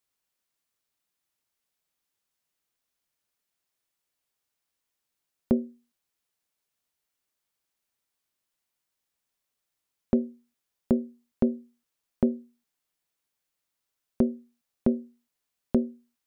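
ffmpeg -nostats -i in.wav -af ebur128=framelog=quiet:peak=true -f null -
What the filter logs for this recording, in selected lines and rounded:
Integrated loudness:
  I:         -29.2 LUFS
  Threshold: -40.6 LUFS
Loudness range:
  LRA:         6.0 LU
  Threshold: -54.5 LUFS
  LRA low:   -37.7 LUFS
  LRA high:  -31.6 LUFS
True peak:
  Peak:       -9.7 dBFS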